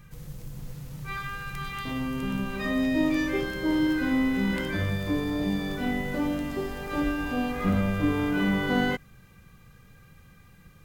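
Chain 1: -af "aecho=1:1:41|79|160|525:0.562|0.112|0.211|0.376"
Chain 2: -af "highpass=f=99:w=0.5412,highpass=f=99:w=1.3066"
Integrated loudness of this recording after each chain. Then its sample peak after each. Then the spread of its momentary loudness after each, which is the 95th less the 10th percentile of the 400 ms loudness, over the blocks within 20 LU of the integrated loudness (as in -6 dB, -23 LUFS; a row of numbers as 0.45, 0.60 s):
-25.5, -28.0 LUFS; -10.5, -12.0 dBFS; 14, 11 LU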